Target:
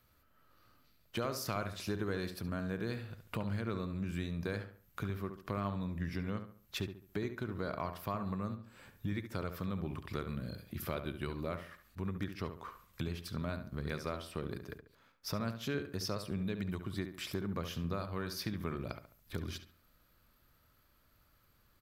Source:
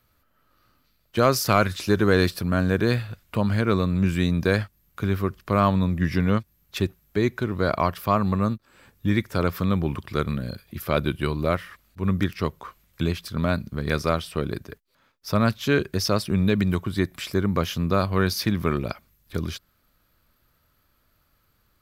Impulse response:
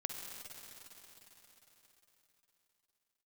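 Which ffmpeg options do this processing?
-filter_complex "[0:a]acompressor=threshold=0.0178:ratio=3,asplit=2[s0][s1];[s1]adelay=70,lowpass=f=2600:p=1,volume=0.376,asplit=2[s2][s3];[s3]adelay=70,lowpass=f=2600:p=1,volume=0.39,asplit=2[s4][s5];[s5]adelay=70,lowpass=f=2600:p=1,volume=0.39,asplit=2[s6][s7];[s7]adelay=70,lowpass=f=2600:p=1,volume=0.39[s8];[s0][s2][s4][s6][s8]amix=inputs=5:normalize=0,volume=0.668"

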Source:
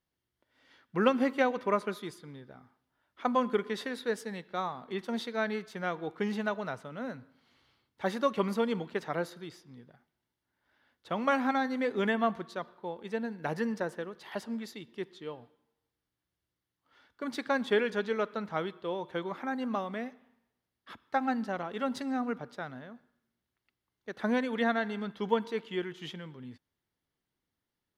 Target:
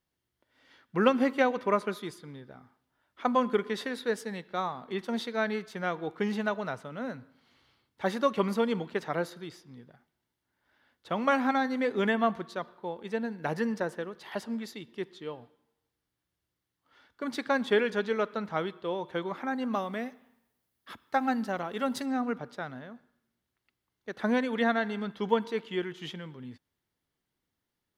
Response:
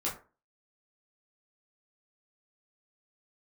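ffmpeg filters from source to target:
-filter_complex "[0:a]asettb=1/sr,asplit=3[s0][s1][s2];[s0]atrim=end=19.734[s3];[s1]atrim=start=19.73:end=22.06,asetpts=PTS-STARTPTS,afade=t=in:d=0.004:c=qsin,afade=t=out:st=2.326:d=0.004:c=qsin,highshelf=f=8900:g=12[s4];[s2]atrim=start=22.056[s5];[s3][s4]acrossfade=d=0.004:c1=hsin:c2=qsin[s6];[s6][s5]acrossfade=d=0.004:c1=qsin:c2=hsin,volume=1.26"

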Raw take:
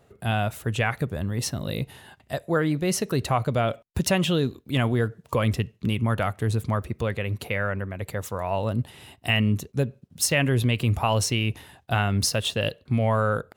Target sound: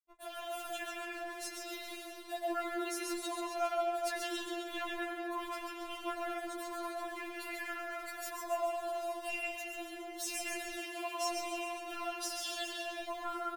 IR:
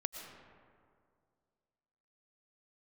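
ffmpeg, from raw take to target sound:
-filter_complex "[0:a]asettb=1/sr,asplit=3[s0][s1][s2];[s0]atrim=end=0.824[s3];[s1]atrim=start=0.82:end=1.62,asetpts=PTS-STARTPTS,afade=t=in:d=0.004:c=qsin,afade=t=out:st=0.796:d=0.004:c=qsin,acompressor=threshold=0.0282:ratio=4[s4];[s2]atrim=start=1.616[s5];[s3][s4]acrossfade=d=0.004:c1=hsin:c2=qsin[s6];[s6][s5]acrossfade=d=0.004:c1=qsin:c2=hsin,acrusher=bits=6:mix=0:aa=0.5,equalizer=f=310:w=1.2:g=-8.5[s7];[1:a]atrim=start_sample=2205,asetrate=48510,aresample=44100[s8];[s7][s8]afir=irnorm=-1:irlink=0,asoftclip=type=tanh:threshold=0.0944,alimiter=level_in=1.88:limit=0.0631:level=0:latency=1:release=25,volume=0.531,asplit=3[s9][s10][s11];[s9]afade=t=out:st=10.77:d=0.02[s12];[s10]highpass=200,afade=t=in:st=10.77:d=0.02,afade=t=out:st=11.21:d=0.02[s13];[s11]afade=t=in:st=11.21:d=0.02[s14];[s12][s13][s14]amix=inputs=3:normalize=0,asplit=9[s15][s16][s17][s18][s19][s20][s21][s22][s23];[s16]adelay=137,afreqshift=40,volume=0.562[s24];[s17]adelay=274,afreqshift=80,volume=0.331[s25];[s18]adelay=411,afreqshift=120,volume=0.195[s26];[s19]adelay=548,afreqshift=160,volume=0.116[s27];[s20]adelay=685,afreqshift=200,volume=0.0684[s28];[s21]adelay=822,afreqshift=240,volume=0.0403[s29];[s22]adelay=959,afreqshift=280,volume=0.0237[s30];[s23]adelay=1096,afreqshift=320,volume=0.014[s31];[s15][s24][s25][s26][s27][s28][s29][s30][s31]amix=inputs=9:normalize=0,afftfilt=real='re*4*eq(mod(b,16),0)':imag='im*4*eq(mod(b,16),0)':win_size=2048:overlap=0.75"

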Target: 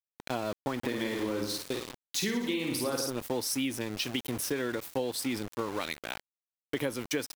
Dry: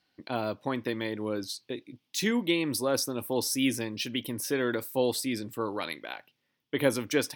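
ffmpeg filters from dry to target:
-filter_complex "[0:a]highpass=52,asplit=3[s0][s1][s2];[s0]afade=t=out:st=0.82:d=0.02[s3];[s1]aecho=1:1:50|107.5|173.6|249.7|337.1:0.631|0.398|0.251|0.158|0.1,afade=t=in:st=0.82:d=0.02,afade=t=out:st=3.09:d=0.02[s4];[s2]afade=t=in:st=3.09:d=0.02[s5];[s3][s4][s5]amix=inputs=3:normalize=0,aeval=exprs='val(0)*gte(abs(val(0)),0.015)':c=same,acompressor=threshold=0.0316:ratio=10,volume=1.33"

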